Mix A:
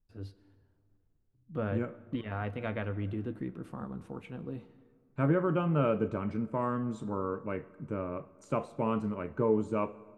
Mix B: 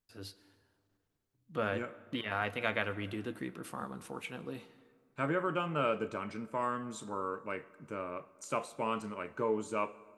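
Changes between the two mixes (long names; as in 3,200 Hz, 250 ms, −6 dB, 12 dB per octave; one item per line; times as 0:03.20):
first voice +4.5 dB
master: add spectral tilt +4 dB per octave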